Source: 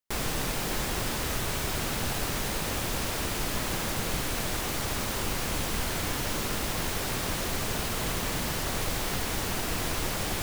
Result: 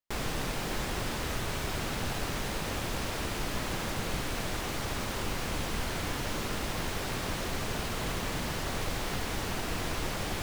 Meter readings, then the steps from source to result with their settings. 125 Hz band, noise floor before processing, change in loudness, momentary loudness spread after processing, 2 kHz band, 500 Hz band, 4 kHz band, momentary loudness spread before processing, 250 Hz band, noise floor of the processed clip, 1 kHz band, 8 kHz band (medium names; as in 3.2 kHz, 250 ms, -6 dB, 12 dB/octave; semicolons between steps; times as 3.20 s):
-2.0 dB, -32 dBFS, -4.0 dB, 0 LU, -2.5 dB, -2.0 dB, -4.0 dB, 0 LU, -2.0 dB, -35 dBFS, -2.0 dB, -6.5 dB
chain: treble shelf 7.3 kHz -9 dB; trim -2 dB